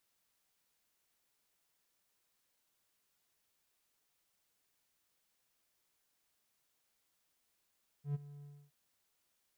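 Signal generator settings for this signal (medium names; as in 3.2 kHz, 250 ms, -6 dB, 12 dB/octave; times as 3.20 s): ADSR triangle 144 Hz, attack 106 ms, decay 24 ms, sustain -17.5 dB, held 0.39 s, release 280 ms -29.5 dBFS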